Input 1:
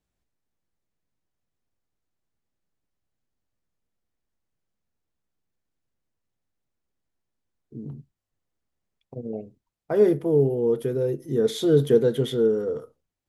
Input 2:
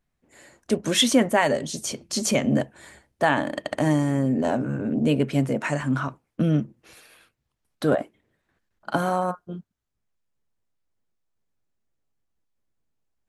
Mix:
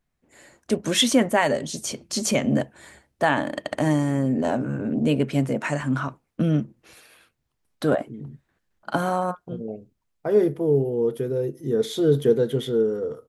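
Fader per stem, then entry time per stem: -0.5, 0.0 dB; 0.35, 0.00 s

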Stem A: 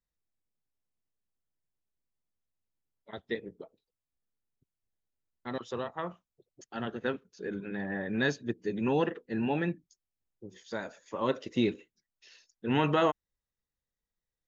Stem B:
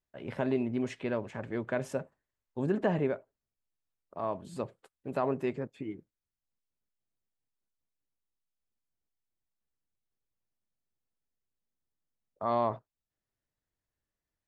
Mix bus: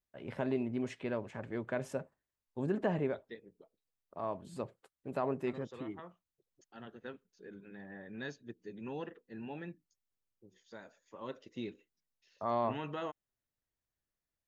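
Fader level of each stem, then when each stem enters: -14.0, -4.0 dB; 0.00, 0.00 s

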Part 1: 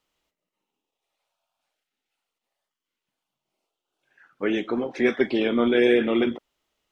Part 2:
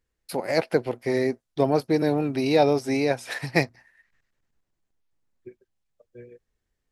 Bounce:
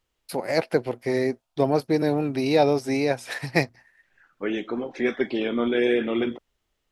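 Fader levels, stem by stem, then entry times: -3.0, 0.0 dB; 0.00, 0.00 s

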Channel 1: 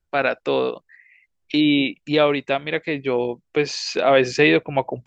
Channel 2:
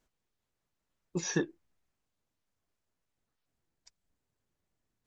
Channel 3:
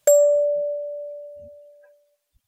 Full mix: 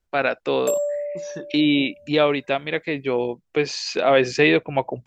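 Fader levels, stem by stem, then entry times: -1.0, -6.0, -8.0 dB; 0.00, 0.00, 0.60 s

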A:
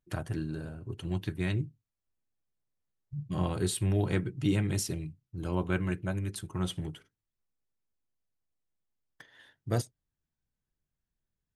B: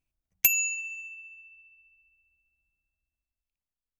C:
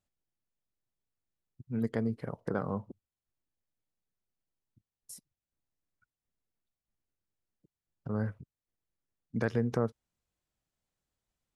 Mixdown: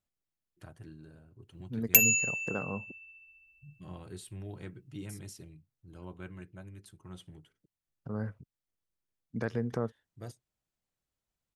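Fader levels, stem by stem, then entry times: -15.0, +1.5, -3.0 dB; 0.50, 1.50, 0.00 s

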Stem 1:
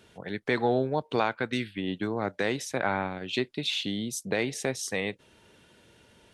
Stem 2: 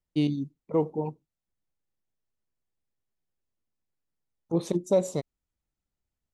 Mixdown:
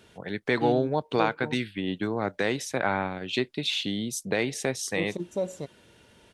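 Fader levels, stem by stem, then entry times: +1.5, -6.5 dB; 0.00, 0.45 s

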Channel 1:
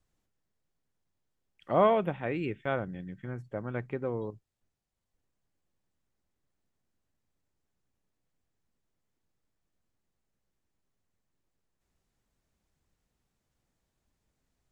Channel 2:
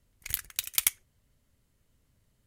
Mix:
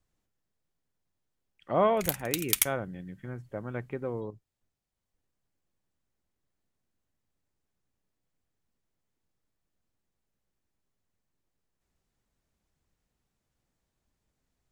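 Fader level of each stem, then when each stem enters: -1.0, 0.0 dB; 0.00, 1.75 s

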